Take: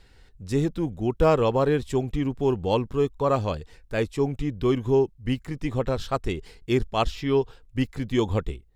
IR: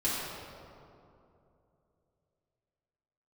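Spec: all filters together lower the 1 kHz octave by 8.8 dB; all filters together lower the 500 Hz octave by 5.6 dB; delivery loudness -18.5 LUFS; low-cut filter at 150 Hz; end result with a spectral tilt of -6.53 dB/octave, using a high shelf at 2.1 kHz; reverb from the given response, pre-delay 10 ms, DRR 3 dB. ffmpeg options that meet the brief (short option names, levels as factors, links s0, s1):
-filter_complex "[0:a]highpass=150,equalizer=f=500:t=o:g=-5,equalizer=f=1000:t=o:g=-9,highshelf=f=2100:g=-3.5,asplit=2[s0][s1];[1:a]atrim=start_sample=2205,adelay=10[s2];[s1][s2]afir=irnorm=-1:irlink=0,volume=0.251[s3];[s0][s3]amix=inputs=2:normalize=0,volume=2.99"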